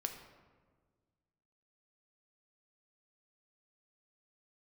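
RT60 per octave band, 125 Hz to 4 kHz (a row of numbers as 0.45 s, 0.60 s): 2.2 s, 2.0 s, 1.7 s, 1.4 s, 1.1 s, 0.80 s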